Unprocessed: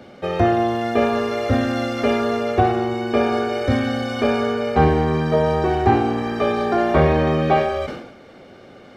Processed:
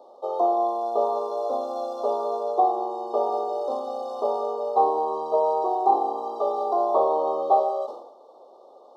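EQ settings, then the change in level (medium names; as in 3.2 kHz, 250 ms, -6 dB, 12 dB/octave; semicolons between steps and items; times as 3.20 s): high-pass 460 Hz 24 dB/octave; elliptic band-stop 1–3.6 kHz, stop band 60 dB; resonant high shelf 1.6 kHz -9.5 dB, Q 3; -2.5 dB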